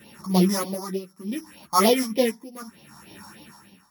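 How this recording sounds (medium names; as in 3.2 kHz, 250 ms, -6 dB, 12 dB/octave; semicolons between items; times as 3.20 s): a buzz of ramps at a fixed pitch in blocks of 8 samples; phasing stages 4, 3.3 Hz, lowest notch 440–1400 Hz; tremolo triangle 0.7 Hz, depth 95%; a shimmering, thickened sound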